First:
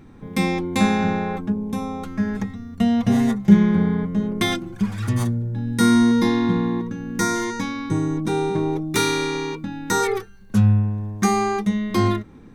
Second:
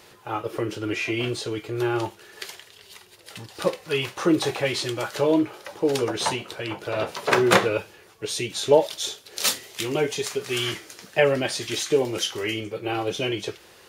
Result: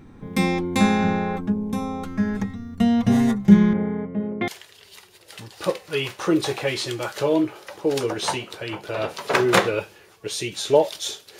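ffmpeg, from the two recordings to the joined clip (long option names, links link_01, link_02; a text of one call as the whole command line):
ffmpeg -i cue0.wav -i cue1.wav -filter_complex "[0:a]asettb=1/sr,asplit=3[link_01][link_02][link_03];[link_01]atrim=end=3.734[link_04];[link_02]atrim=start=3.73:end=4.48,asetpts=PTS-STARTPTS,afade=type=in:duration=0.004:curve=qsin,afade=type=out:start_time=0.746:duration=0.004:curve=qsin,highpass=140,equalizer=frequency=170:width_type=q:width=4:gain=-9,equalizer=frequency=310:width_type=q:width=4:gain=-5,equalizer=frequency=570:width_type=q:width=4:gain=4,equalizer=frequency=1100:width_type=q:width=4:gain=-7,equalizer=frequency=1600:width_type=q:width=4:gain=-7,lowpass=frequency=2300:width=0.5412,lowpass=frequency=2300:width=1.3066[link_05];[link_03]atrim=start=4.476[link_06];[link_04][link_05]acrossfade=duration=0.004:curve1=hsin:curve2=qsin[link_07];[link_07][link_06]acrossfade=duration=0.004:curve1=qsin:curve2=hsin,apad=whole_dur=11.39,atrim=end=11.39,atrim=end=4.482[link_08];[1:a]atrim=start=2.458:end=9.37[link_09];[link_08][link_09]acrossfade=duration=0.004:curve1=hsin:curve2=hsin" out.wav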